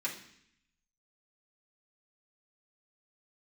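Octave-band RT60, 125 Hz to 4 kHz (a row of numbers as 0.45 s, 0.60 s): 1.0 s, 0.90 s, 0.65 s, 0.65 s, 0.85 s, 0.80 s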